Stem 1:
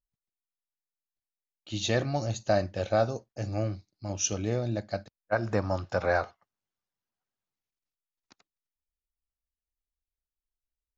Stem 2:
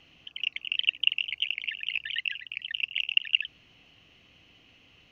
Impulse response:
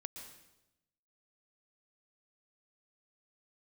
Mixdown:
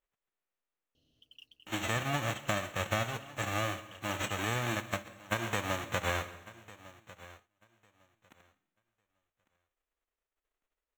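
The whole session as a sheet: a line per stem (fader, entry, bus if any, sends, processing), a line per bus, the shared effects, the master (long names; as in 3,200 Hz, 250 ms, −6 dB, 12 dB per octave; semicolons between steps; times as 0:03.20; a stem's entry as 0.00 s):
+2.5 dB, 0.00 s, send −3.5 dB, echo send −16 dB, spectral envelope flattened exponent 0.1; downward compressor, threshold −29 dBFS, peak gain reduction 9.5 dB; moving average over 9 samples
−4.0 dB, 0.95 s, no send, no echo send, inverse Chebyshev band-stop filter 940–2,300 Hz, stop band 40 dB; noise that follows the level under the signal 22 dB; notch comb filter 180 Hz; automatic ducking −11 dB, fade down 2.00 s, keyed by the first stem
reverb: on, RT60 0.95 s, pre-delay 110 ms
echo: repeating echo 1,151 ms, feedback 18%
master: no processing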